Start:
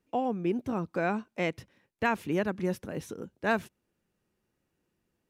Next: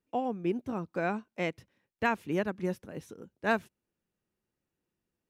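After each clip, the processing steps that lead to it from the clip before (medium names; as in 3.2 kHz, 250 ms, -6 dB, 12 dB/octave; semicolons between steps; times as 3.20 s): upward expansion 1.5:1, over -39 dBFS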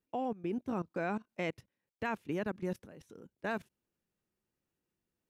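level held to a coarse grid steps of 18 dB; trim +2 dB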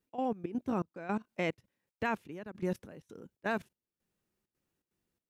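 trance gate "x.xxx.xxx...xxxx" 165 bpm -12 dB; trim +3 dB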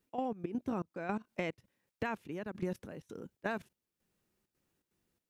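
compression 6:1, threshold -36 dBFS, peak gain reduction 8.5 dB; trim +3.5 dB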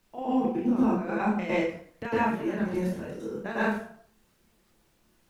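plate-style reverb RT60 0.57 s, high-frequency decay 0.75×, pre-delay 95 ms, DRR -9.5 dB; added noise pink -69 dBFS; chorus voices 6, 0.89 Hz, delay 30 ms, depth 3.4 ms; trim +3 dB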